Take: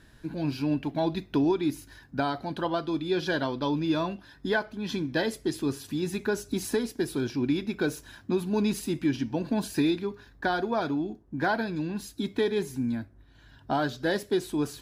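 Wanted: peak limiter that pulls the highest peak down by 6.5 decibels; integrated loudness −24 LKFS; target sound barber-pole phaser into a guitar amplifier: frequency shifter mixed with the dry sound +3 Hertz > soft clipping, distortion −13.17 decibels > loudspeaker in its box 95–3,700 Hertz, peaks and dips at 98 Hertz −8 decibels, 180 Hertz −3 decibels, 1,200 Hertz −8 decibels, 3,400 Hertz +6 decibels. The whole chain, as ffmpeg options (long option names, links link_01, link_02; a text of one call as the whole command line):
ffmpeg -i in.wav -filter_complex "[0:a]alimiter=limit=-22.5dB:level=0:latency=1,asplit=2[link_01][link_02];[link_02]afreqshift=3[link_03];[link_01][link_03]amix=inputs=2:normalize=1,asoftclip=threshold=-31dB,highpass=95,equalizer=frequency=98:width_type=q:width=4:gain=-8,equalizer=frequency=180:width_type=q:width=4:gain=-3,equalizer=frequency=1200:width_type=q:width=4:gain=-8,equalizer=frequency=3400:width_type=q:width=4:gain=6,lowpass=frequency=3700:width=0.5412,lowpass=frequency=3700:width=1.3066,volume=15.5dB" out.wav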